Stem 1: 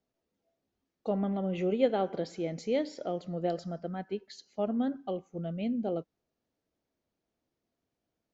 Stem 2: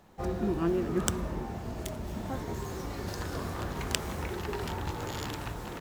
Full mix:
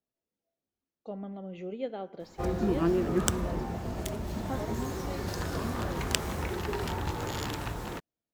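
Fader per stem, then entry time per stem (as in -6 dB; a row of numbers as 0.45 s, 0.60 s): -9.0 dB, +2.0 dB; 0.00 s, 2.20 s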